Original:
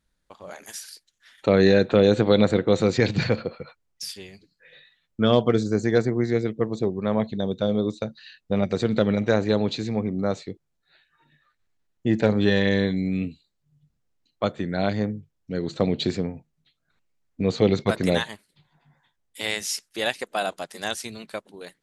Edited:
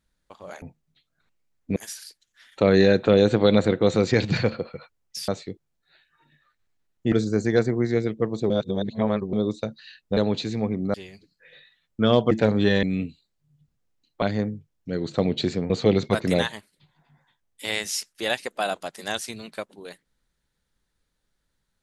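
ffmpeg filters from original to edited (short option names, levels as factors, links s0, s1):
-filter_complex "[0:a]asplit=13[s0][s1][s2][s3][s4][s5][s6][s7][s8][s9][s10][s11][s12];[s0]atrim=end=0.622[s13];[s1]atrim=start=16.318:end=17.462[s14];[s2]atrim=start=0.618:end=4.142[s15];[s3]atrim=start=10.278:end=12.122[s16];[s4]atrim=start=5.508:end=6.892[s17];[s5]atrim=start=6.888:end=7.722,asetpts=PTS-STARTPTS,areverse[s18];[s6]atrim=start=7.718:end=8.562[s19];[s7]atrim=start=9.508:end=10.282[s20];[s8]atrim=start=4.138:end=5.512[s21];[s9]atrim=start=12.118:end=12.642[s22];[s10]atrim=start=13.048:end=14.442[s23];[s11]atrim=start=14.838:end=16.322[s24];[s12]atrim=start=17.458[s25];[s13][s14]acrossfade=d=0.004:c1=hsin:c2=hsin[s26];[s26][s15]acrossfade=d=0.004:c1=hsin:c2=hsin[s27];[s27][s16]acrossfade=d=0.004:c1=hsin:c2=hsin[s28];[s28][s17]acrossfade=d=0.004:c1=hsin:c2=hsin[s29];[s29][s18]acrossfade=d=0.004:c1=hsin:c2=hsin[s30];[s30][s19]acrossfade=d=0.004:c1=hsin:c2=hsin[s31];[s31][s20]acrossfade=d=0.004:c1=hsin:c2=hsin[s32];[s32][s21]acrossfade=d=0.004:c1=hsin:c2=hsin[s33];[s33][s22]acrossfade=d=0.004:c1=hsin:c2=hsin[s34];[s34][s23]acrossfade=d=0.004:c1=hsin:c2=hsin[s35];[s35][s24]acrossfade=d=0.004:c1=hsin:c2=hsin[s36];[s36][s25]acrossfade=d=0.004:c1=hsin:c2=hsin"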